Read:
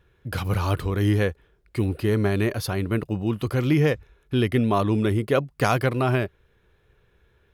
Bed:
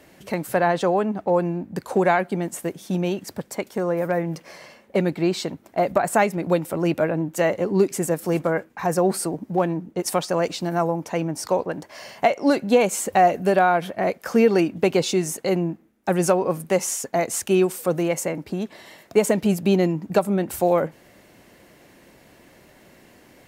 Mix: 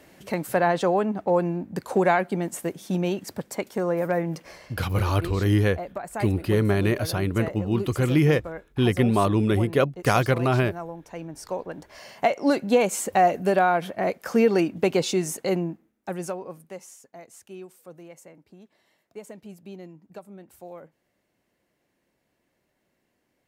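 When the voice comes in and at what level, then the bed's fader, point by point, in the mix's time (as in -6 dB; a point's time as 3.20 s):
4.45 s, +0.5 dB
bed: 4.48 s -1.5 dB
4.96 s -13.5 dB
11.01 s -13.5 dB
12.32 s -2.5 dB
15.53 s -2.5 dB
17.03 s -22.5 dB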